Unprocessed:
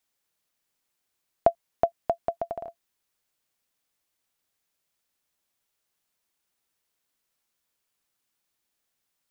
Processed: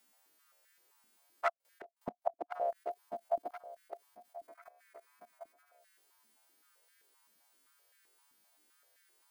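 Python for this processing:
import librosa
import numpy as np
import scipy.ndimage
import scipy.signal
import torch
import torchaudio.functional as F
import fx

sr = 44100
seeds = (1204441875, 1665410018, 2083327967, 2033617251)

y = fx.freq_snap(x, sr, grid_st=2)
y = fx.high_shelf(y, sr, hz=2500.0, db=-11.0)
y = fx.clip_asym(y, sr, top_db=-18.5, bottom_db=-13.5)
y = fx.echo_feedback(y, sr, ms=1044, feedback_pct=32, wet_db=-16.5)
y = fx.gate_flip(y, sr, shuts_db=-24.0, range_db=-36, at=(1.48, 2.5), fade=0.02)
y = fx.spec_box(y, sr, start_s=4.48, length_s=1.31, low_hz=930.0, high_hz=2600.0, gain_db=9)
y = fx.level_steps(y, sr, step_db=16)
y = fx.wow_flutter(y, sr, seeds[0], rate_hz=2.1, depth_cents=49.0)
y = fx.filter_held_highpass(y, sr, hz=7.7, low_hz=220.0, high_hz=1700.0)
y = y * librosa.db_to_amplitude(9.0)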